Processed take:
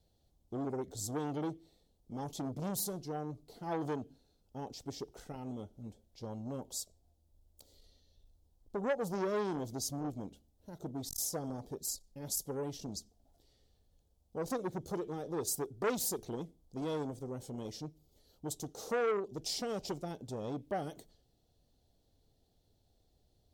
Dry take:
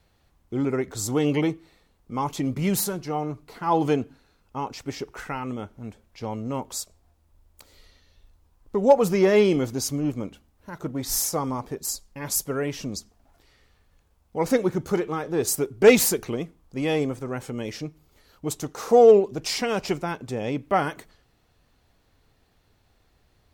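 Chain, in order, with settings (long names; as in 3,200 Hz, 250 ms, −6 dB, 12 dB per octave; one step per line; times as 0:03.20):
flat-topped bell 1,600 Hz −15 dB
downward compressor 2 to 1, threshold −24 dBFS, peak gain reduction 9 dB
saturating transformer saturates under 990 Hz
level −8 dB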